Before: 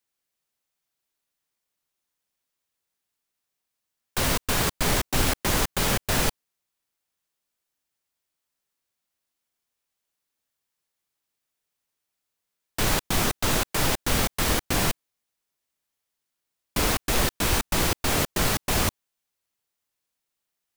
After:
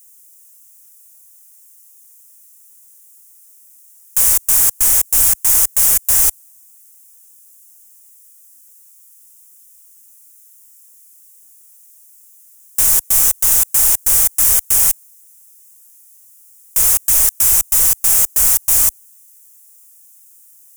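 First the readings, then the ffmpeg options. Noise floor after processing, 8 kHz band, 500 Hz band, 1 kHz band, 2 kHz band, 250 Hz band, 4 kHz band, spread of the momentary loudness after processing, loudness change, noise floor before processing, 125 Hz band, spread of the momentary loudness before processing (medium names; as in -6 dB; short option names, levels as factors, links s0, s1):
-47 dBFS, +16.5 dB, -8.0 dB, -4.5 dB, -3.0 dB, under -10 dB, -0.5 dB, 4 LU, +14.0 dB, -83 dBFS, -8.0 dB, 4 LU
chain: -filter_complex "[0:a]asplit=2[s0][s1];[s1]highpass=f=720:p=1,volume=50.1,asoftclip=type=tanh:threshold=0.355[s2];[s0][s2]amix=inputs=2:normalize=0,lowpass=f=5800:p=1,volume=0.501,asubboost=boost=6.5:cutoff=85,aexciter=amount=10.4:drive=9.6:freq=6300,volume=0.224"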